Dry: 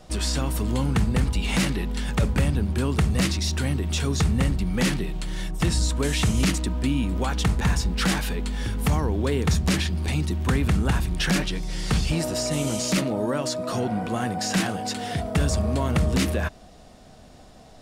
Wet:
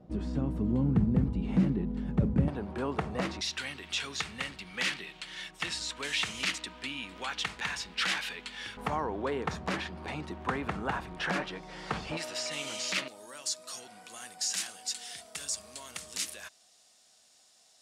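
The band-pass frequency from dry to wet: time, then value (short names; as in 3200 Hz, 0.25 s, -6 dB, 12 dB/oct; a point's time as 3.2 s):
band-pass, Q 1
210 Hz
from 2.48 s 770 Hz
from 3.41 s 2600 Hz
from 8.77 s 950 Hz
from 12.17 s 2600 Hz
from 13.08 s 7600 Hz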